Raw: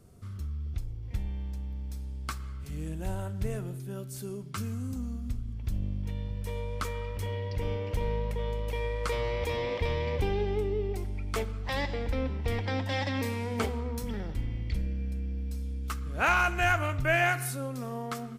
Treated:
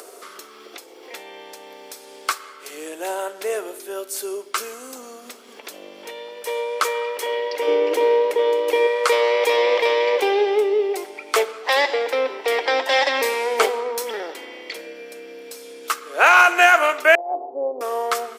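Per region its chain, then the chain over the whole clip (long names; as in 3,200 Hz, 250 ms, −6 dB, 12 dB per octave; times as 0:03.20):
0:07.67–0:08.87: linear-phase brick-wall high-pass 150 Hz + parametric band 320 Hz +15 dB 0.66 octaves
0:17.15–0:17.81: Butterworth low-pass 900 Hz 72 dB per octave + compressor whose output falls as the input rises −33 dBFS, ratio −0.5 + amplitude modulation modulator 150 Hz, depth 25%
whole clip: Butterworth high-pass 390 Hz 36 dB per octave; upward compression, threshold −48 dBFS; boost into a limiter +16.5 dB; level −1.5 dB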